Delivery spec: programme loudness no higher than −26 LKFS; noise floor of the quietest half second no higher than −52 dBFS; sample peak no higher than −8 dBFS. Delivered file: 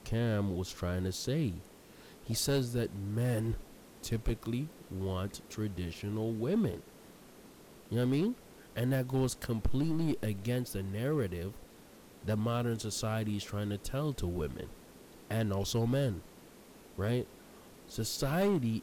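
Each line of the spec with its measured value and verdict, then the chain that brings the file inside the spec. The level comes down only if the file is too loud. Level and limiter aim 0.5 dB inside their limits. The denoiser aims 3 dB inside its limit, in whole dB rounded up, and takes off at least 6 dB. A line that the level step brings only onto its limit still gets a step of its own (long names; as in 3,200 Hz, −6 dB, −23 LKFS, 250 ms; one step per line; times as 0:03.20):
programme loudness −34.5 LKFS: in spec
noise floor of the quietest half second −56 dBFS: in spec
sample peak −23.5 dBFS: in spec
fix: no processing needed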